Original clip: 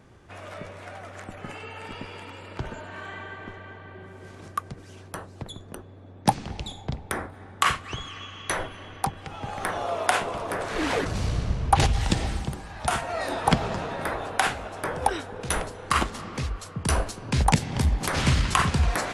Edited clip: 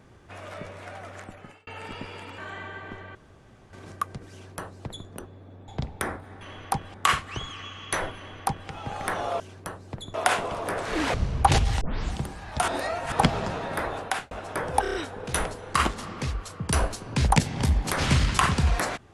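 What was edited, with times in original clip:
0:01.13–0:01.67: fade out
0:02.38–0:02.94: remove
0:03.71–0:04.29: fill with room tone
0:04.88–0:05.62: duplicate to 0:09.97
0:06.24–0:06.78: remove
0:08.73–0:09.26: duplicate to 0:07.51
0:10.97–0:11.42: remove
0:12.09: tape start 0.32 s
0:12.96–0:13.40: reverse
0:14.26–0:14.59: fade out
0:15.10: stutter 0.03 s, 5 plays

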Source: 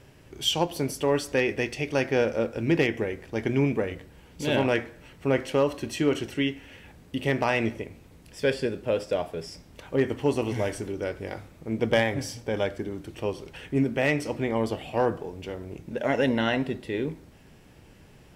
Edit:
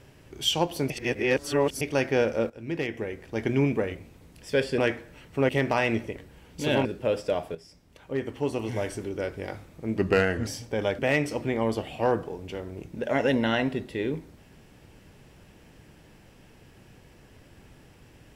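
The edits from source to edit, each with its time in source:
0:00.90–0:01.81: reverse
0:02.50–0:03.46: fade in, from −15 dB
0:03.97–0:04.66: swap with 0:07.87–0:08.68
0:05.37–0:07.20: remove
0:09.38–0:11.10: fade in, from −12.5 dB
0:11.81–0:12.22: play speed 84%
0:12.74–0:13.93: remove

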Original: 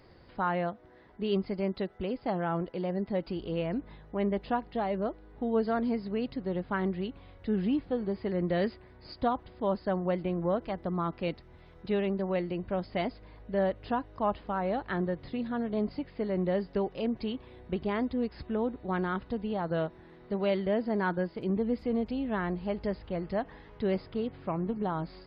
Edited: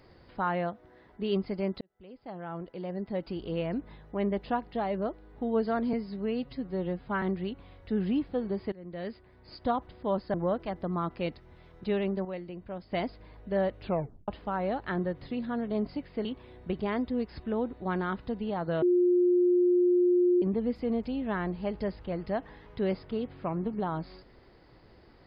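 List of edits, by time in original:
0:01.81–0:03.51: fade in
0:05.93–0:06.79: time-stretch 1.5×
0:08.29–0:09.31: fade in, from −21.5 dB
0:09.91–0:10.36: remove
0:12.27–0:12.94: clip gain −7.5 dB
0:13.84: tape stop 0.46 s
0:16.27–0:17.28: remove
0:19.85–0:21.45: beep over 356 Hz −20 dBFS

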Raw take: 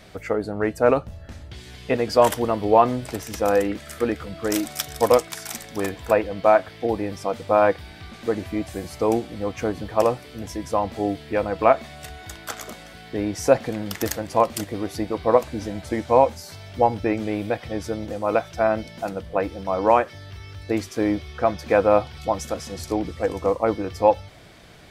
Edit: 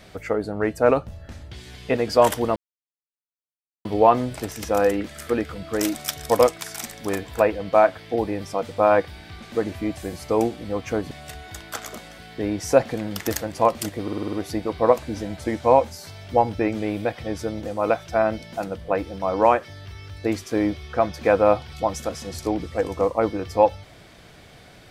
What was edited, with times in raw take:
0:02.56: splice in silence 1.29 s
0:09.82–0:11.86: remove
0:14.78: stutter 0.05 s, 7 plays

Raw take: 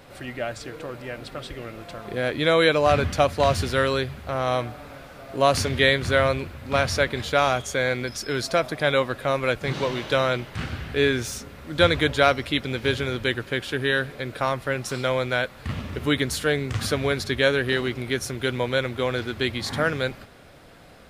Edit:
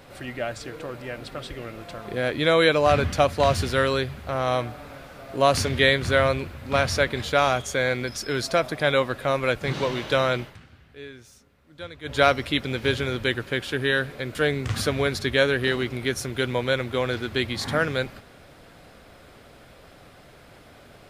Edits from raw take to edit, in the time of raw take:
0:10.42–0:12.20: duck −20 dB, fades 0.17 s
0:14.35–0:16.40: remove

